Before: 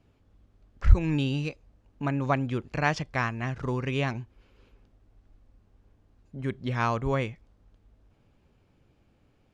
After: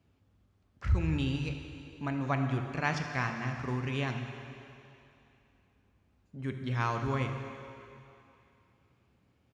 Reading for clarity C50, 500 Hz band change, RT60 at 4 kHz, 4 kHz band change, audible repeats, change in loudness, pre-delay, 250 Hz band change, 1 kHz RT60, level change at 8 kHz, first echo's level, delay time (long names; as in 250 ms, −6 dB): 5.0 dB, −6.5 dB, 2.8 s, −3.0 dB, 1, −4.5 dB, 8 ms, −4.0 dB, 2.9 s, can't be measured, −16.0 dB, 75 ms